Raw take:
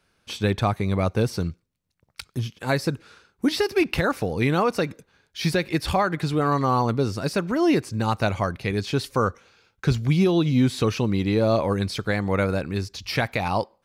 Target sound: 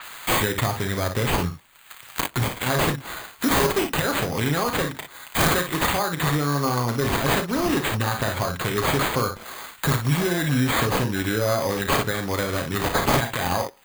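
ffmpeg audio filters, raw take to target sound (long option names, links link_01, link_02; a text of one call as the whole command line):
ffmpeg -i in.wav -filter_complex "[0:a]acompressor=threshold=-28dB:ratio=2.5,asplit=2[link_01][link_02];[link_02]aecho=0:1:34|56:0.355|0.376[link_03];[link_01][link_03]amix=inputs=2:normalize=0,aexciter=amount=7.8:drive=4.6:freq=3700,aecho=1:1:7.5:0.34,acrusher=samples=8:mix=1:aa=0.000001,acrossover=split=940[link_04][link_05];[link_05]acompressor=mode=upward:threshold=-28dB:ratio=2.5[link_06];[link_04][link_06]amix=inputs=2:normalize=0,aeval=exprs='0.316*(abs(mod(val(0)/0.316+3,4)-2)-1)':channel_layout=same,highshelf=frequency=10000:gain=9.5,alimiter=level_in=9.5dB:limit=-1dB:release=50:level=0:latency=1,adynamicequalizer=threshold=0.02:dfrequency=5200:dqfactor=0.7:tfrequency=5200:tqfactor=0.7:attack=5:release=100:ratio=0.375:range=2.5:mode=cutabove:tftype=highshelf,volume=-6.5dB" out.wav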